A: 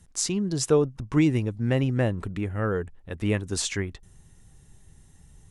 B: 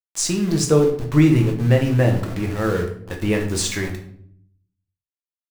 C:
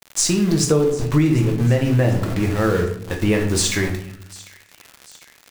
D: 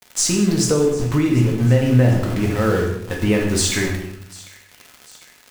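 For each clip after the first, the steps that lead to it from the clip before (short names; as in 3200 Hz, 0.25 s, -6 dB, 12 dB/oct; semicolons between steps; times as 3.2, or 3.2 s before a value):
sample gate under -34.5 dBFS; reverb RT60 0.65 s, pre-delay 6 ms, DRR 1.5 dB; gain +3.5 dB
compressor 4:1, threshold -18 dBFS, peak gain reduction 8 dB; crackle 130/s -32 dBFS; thin delay 0.746 s, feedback 54%, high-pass 1800 Hz, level -19.5 dB; gain +4.5 dB
non-linear reverb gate 0.25 s falling, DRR 3.5 dB; gain -1 dB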